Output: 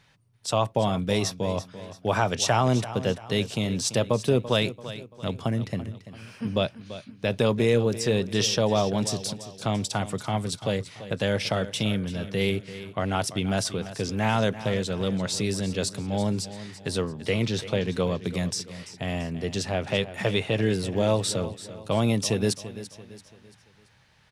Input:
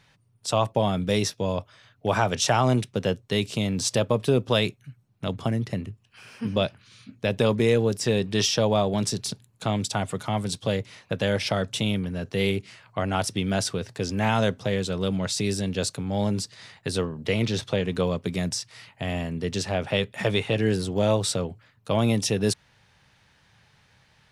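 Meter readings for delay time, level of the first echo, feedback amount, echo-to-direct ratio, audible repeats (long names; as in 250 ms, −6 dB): 338 ms, −14.0 dB, 42%, −13.0 dB, 3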